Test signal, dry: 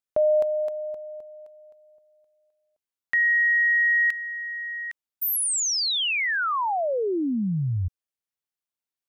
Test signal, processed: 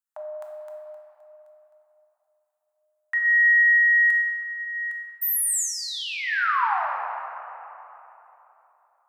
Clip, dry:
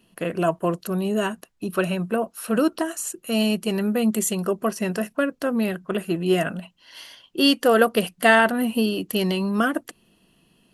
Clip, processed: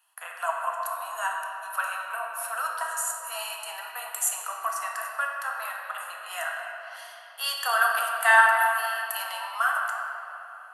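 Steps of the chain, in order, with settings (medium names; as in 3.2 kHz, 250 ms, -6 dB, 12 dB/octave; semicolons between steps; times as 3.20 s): steep high-pass 800 Hz 48 dB/octave; high-order bell 3.5 kHz -9 dB; simulated room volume 220 m³, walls hard, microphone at 0.56 m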